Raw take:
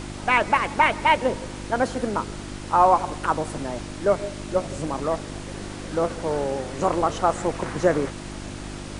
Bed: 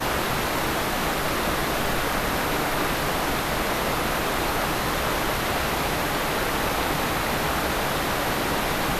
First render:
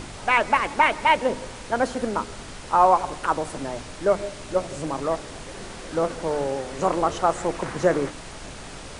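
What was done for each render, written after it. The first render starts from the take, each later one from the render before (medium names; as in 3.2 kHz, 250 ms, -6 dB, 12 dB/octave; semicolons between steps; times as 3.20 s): de-hum 50 Hz, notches 7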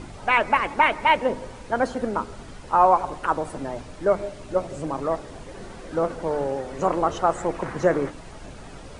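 noise reduction 9 dB, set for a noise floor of -39 dBFS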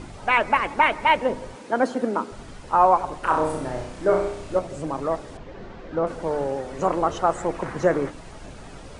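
1.55–2.32 s: resonant high-pass 250 Hz, resonance Q 1.5; 3.20–4.59 s: flutter echo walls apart 5.5 m, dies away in 0.61 s; 5.37–6.07 s: distance through air 180 m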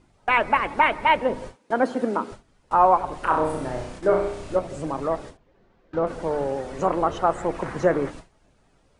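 gate with hold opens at -26 dBFS; dynamic bell 6.7 kHz, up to -7 dB, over -45 dBFS, Q 0.95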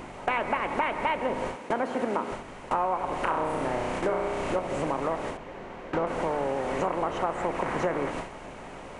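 spectral levelling over time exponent 0.6; compression 4:1, threshold -26 dBFS, peak gain reduction 13.5 dB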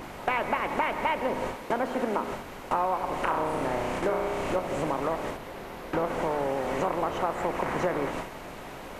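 add bed -23 dB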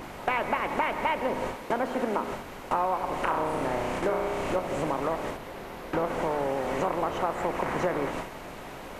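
no audible change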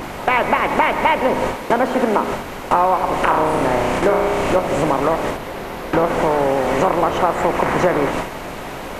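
trim +11.5 dB; peak limiter -2 dBFS, peak gain reduction 2 dB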